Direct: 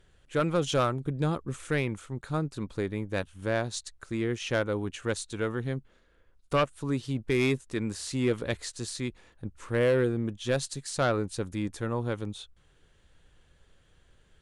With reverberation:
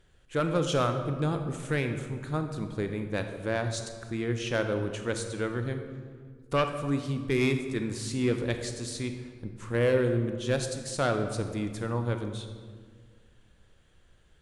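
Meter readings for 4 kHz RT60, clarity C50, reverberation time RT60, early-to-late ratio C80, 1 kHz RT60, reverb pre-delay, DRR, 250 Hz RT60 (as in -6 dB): 1.1 s, 7.5 dB, 1.8 s, 9.0 dB, 1.6 s, 27 ms, 6.5 dB, 2.3 s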